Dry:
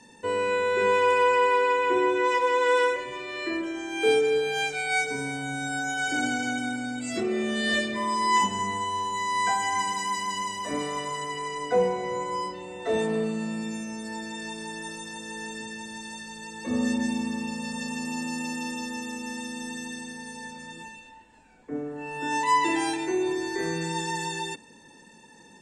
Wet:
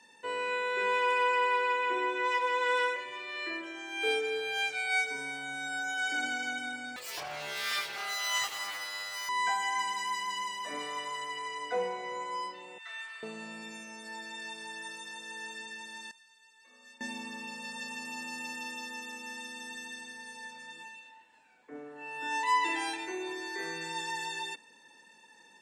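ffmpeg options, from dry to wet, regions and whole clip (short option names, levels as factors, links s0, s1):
-filter_complex "[0:a]asettb=1/sr,asplit=3[s0][s1][s2];[s0]atrim=end=6.964[s3];[s1]atrim=start=6.96:end=9.29,asetpts=PTS-STARTPTS,afade=t=in:d=0.004:c=qsin,afade=t=out:st=2.326:d=0.004:c=qsin,equalizer=f=5600:t=o:w=0.42:g=11.5,aeval=exprs='abs(val(0))':c=same,aeval=exprs='val(0)+0.00224*sin(2*PI*4400*n/s)':c=same[s4];[s2]atrim=start=9.286[s5];[s3][s4]acrossfade=d=0.004:c1=hsin:c2=qsin[s6];[s6][s5]acrossfade=d=0.004:c1=qsin:c2=hsin,asettb=1/sr,asplit=3[s7][s8][s9];[s7]atrim=end=12.784[s10];[s8]atrim=start=12.78:end=13.23,asetpts=PTS-STARTPTS,afade=t=in:d=0.004:c=qsin,afade=t=out:st=0.446:d=0.004:c=qsin,acrossover=split=3100[s11][s12];[s12]acompressor=threshold=0.00501:ratio=4:attack=1:release=60[s13];[s11][s13]amix=inputs=2:normalize=0,highpass=f=1300:w=0.5412,highpass=f=1300:w=1.3066,highshelf=f=7800:g=-4.5[s14];[s9]atrim=start=13.226[s15];[s10][s14]acrossfade=d=0.004:c1=hsin:c2=qsin[s16];[s16][s15]acrossfade=d=0.004:c1=qsin:c2=hsin,asettb=1/sr,asplit=3[s17][s18][s19];[s17]atrim=end=16.114[s20];[s18]atrim=start=16.11:end=17.01,asetpts=PTS-STARTPTS,afade=t=in:d=0.004:c=qsin,afade=t=out:st=0.896:d=0.004:c=qsin,lowpass=f=1400:p=1,aderivative[s21];[s19]atrim=start=17.006[s22];[s20][s21]acrossfade=d=0.004:c1=hsin:c2=qsin[s23];[s23][s22]acrossfade=d=0.004:c1=qsin:c2=hsin,highpass=f=1500:p=1,equalizer=f=7500:t=o:w=1.2:g=-8.5"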